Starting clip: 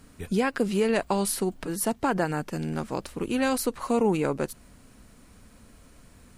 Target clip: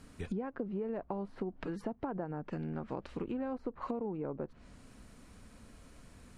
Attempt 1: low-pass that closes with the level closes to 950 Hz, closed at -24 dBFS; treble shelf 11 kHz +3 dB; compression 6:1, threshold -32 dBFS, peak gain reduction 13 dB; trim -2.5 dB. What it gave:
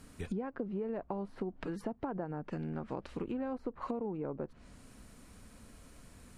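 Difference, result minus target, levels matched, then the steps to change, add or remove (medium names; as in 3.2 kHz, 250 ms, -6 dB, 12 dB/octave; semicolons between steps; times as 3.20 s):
8 kHz band +3.5 dB
change: treble shelf 11 kHz -8.5 dB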